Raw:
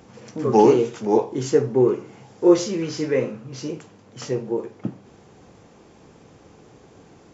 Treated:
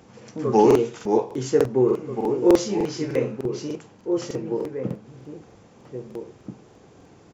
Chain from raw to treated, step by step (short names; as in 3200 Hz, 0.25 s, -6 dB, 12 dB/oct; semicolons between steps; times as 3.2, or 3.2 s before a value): HPF 41 Hz; outdoor echo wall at 280 m, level -7 dB; crackling interface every 0.30 s, samples 2048, repeat, from 0.66; gain -2 dB